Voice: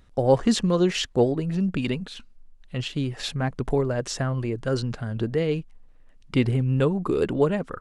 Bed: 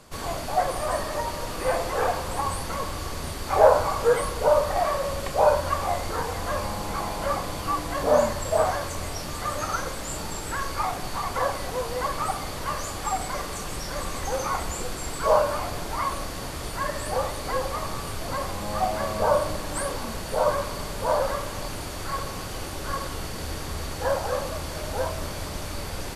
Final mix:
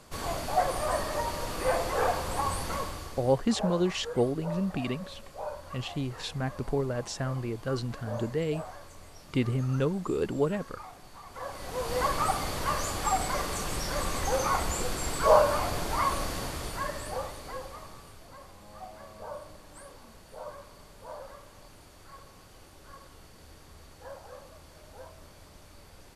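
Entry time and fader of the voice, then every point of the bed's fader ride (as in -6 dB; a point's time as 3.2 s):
3.00 s, -6.0 dB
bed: 2.76 s -2.5 dB
3.5 s -18.5 dB
11.25 s -18.5 dB
11.96 s 0 dB
16.33 s 0 dB
18.31 s -19.5 dB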